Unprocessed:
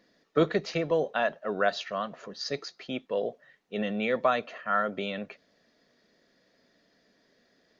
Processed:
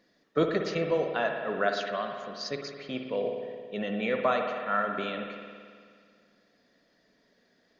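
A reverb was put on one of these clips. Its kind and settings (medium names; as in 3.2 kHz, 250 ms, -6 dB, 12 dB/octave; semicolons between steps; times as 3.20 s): spring tank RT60 2 s, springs 54 ms, chirp 65 ms, DRR 3.5 dB; trim -2 dB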